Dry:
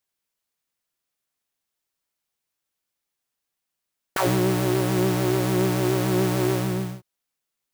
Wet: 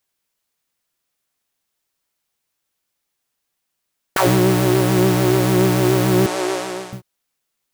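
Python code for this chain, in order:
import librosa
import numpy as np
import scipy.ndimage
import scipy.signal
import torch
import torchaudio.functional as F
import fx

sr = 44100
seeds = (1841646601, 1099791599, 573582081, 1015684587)

y = fx.cheby1_bandpass(x, sr, low_hz=510.0, high_hz=8200.0, order=2, at=(6.26, 6.93))
y = y * 10.0 ** (6.5 / 20.0)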